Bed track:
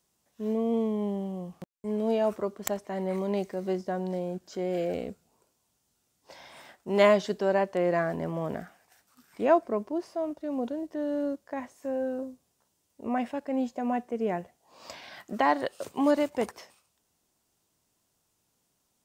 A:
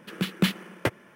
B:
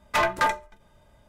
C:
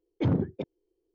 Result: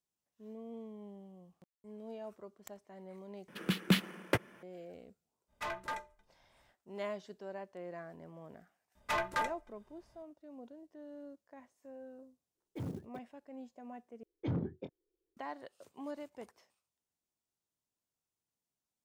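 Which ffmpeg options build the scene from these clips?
ffmpeg -i bed.wav -i cue0.wav -i cue1.wav -i cue2.wav -filter_complex "[2:a]asplit=2[link_01][link_02];[3:a]asplit=2[link_03][link_04];[0:a]volume=-19.5dB[link_05];[link_03]acrusher=bits=6:mode=log:mix=0:aa=0.000001[link_06];[link_04]asplit=2[link_07][link_08];[link_08]adelay=24,volume=-10dB[link_09];[link_07][link_09]amix=inputs=2:normalize=0[link_10];[link_05]asplit=3[link_11][link_12][link_13];[link_11]atrim=end=3.484[link_14];[1:a]atrim=end=1.15,asetpts=PTS-STARTPTS,volume=-4.5dB[link_15];[link_12]atrim=start=4.626:end=14.234[link_16];[link_10]atrim=end=1.14,asetpts=PTS-STARTPTS,volume=-10.5dB[link_17];[link_13]atrim=start=15.366[link_18];[link_01]atrim=end=1.28,asetpts=PTS-STARTPTS,volume=-17dB,afade=type=in:duration=0.05,afade=type=out:start_time=1.23:duration=0.05,adelay=5470[link_19];[link_02]atrim=end=1.28,asetpts=PTS-STARTPTS,volume=-11dB,afade=type=in:duration=0.004:curve=hsin,afade=type=out:start_time=1.276:duration=0.004:curve=hsin,adelay=8950[link_20];[link_06]atrim=end=1.14,asetpts=PTS-STARTPTS,volume=-15.5dB,afade=type=in:duration=0.004:curve=hsin,afade=type=out:start_time=1.136:duration=0.004:curve=hsin,adelay=12550[link_21];[link_14][link_15]acrossfade=duration=0.004:curve1=hsin:curve2=hsin[link_22];[link_22][link_16]acrossfade=duration=0.004:curve1=hsin:curve2=hsin[link_23];[link_23][link_17]acrossfade=duration=0.004:curve1=hsin:curve2=hsin[link_24];[link_24][link_18]acrossfade=duration=0.004:curve1=hsin:curve2=hsin[link_25];[link_25][link_19][link_20][link_21]amix=inputs=4:normalize=0" out.wav

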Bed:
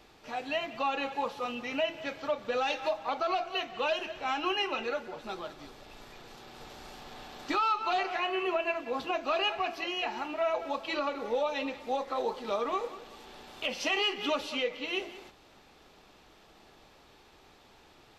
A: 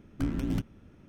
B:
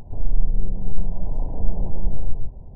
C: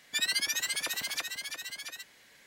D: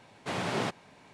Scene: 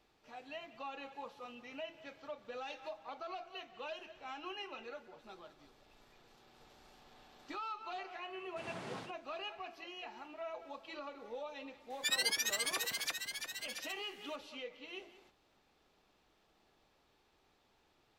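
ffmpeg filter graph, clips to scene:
ffmpeg -i bed.wav -i cue0.wav -i cue1.wav -i cue2.wav -i cue3.wav -filter_complex "[0:a]volume=-14.5dB[link_01];[4:a]aecho=1:1:61.22|105:0.891|0.501[link_02];[3:a]highpass=61[link_03];[link_02]atrim=end=1.13,asetpts=PTS-STARTPTS,volume=-17.5dB,afade=type=in:duration=0.004:curve=hsin,afade=type=out:start_time=1.126:duration=0.004:curve=hsin,adelay=8300[link_04];[link_03]atrim=end=2.46,asetpts=PTS-STARTPTS,volume=-4dB,afade=type=in:duration=0.004:curve=hsin,afade=type=out:start_time=2.456:duration=0.004:curve=hsin,adelay=11900[link_05];[link_01][link_04][link_05]amix=inputs=3:normalize=0" out.wav

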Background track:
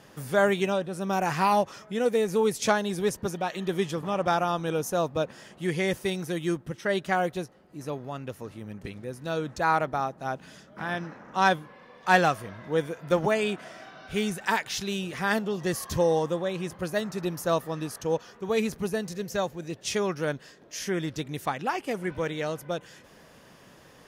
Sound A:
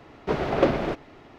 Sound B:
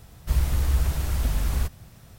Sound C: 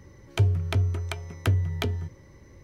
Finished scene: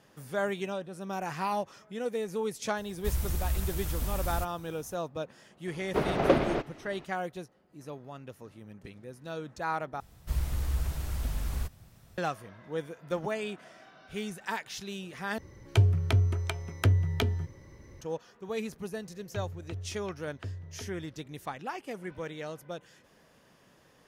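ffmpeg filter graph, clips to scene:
ffmpeg -i bed.wav -i cue0.wav -i cue1.wav -i cue2.wav -filter_complex "[2:a]asplit=2[link_01][link_02];[3:a]asplit=2[link_03][link_04];[0:a]volume=-8.5dB[link_05];[link_01]highshelf=frequency=7700:gain=11[link_06];[link_04]lowpass=4200[link_07];[link_05]asplit=3[link_08][link_09][link_10];[link_08]atrim=end=10.004[link_11];[link_02]atrim=end=2.18,asetpts=PTS-STARTPTS,volume=-8dB[link_12];[link_09]atrim=start=12.176:end=15.384[link_13];[link_03]atrim=end=2.63,asetpts=PTS-STARTPTS,volume=-0.5dB[link_14];[link_10]atrim=start=18.006[link_15];[link_06]atrim=end=2.18,asetpts=PTS-STARTPTS,volume=-8.5dB,afade=type=in:duration=0.004:curve=hsin,afade=type=out:start_time=2.176:duration=0.004:curve=hsin,adelay=2770[link_16];[1:a]atrim=end=1.38,asetpts=PTS-STARTPTS,volume=-2.5dB,afade=type=in:duration=0.004:curve=hsin,afade=type=out:start_time=1.376:duration=0.004:curve=hsin,adelay=5670[link_17];[link_07]atrim=end=2.63,asetpts=PTS-STARTPTS,volume=-16dB,afade=type=in:duration=0.004:curve=hsin,afade=type=out:start_time=2.626:duration=0.004:curve=hsin,adelay=18970[link_18];[link_11][link_12]acrossfade=duration=0.004:curve1=hsin:curve2=hsin[link_19];[link_19][link_13]acrossfade=duration=0.004:curve1=hsin:curve2=hsin[link_20];[link_20][link_14]acrossfade=duration=0.004:curve1=hsin:curve2=hsin[link_21];[link_21][link_15]acrossfade=duration=0.004:curve1=hsin:curve2=hsin[link_22];[link_22][link_16][link_17][link_18]amix=inputs=4:normalize=0" out.wav

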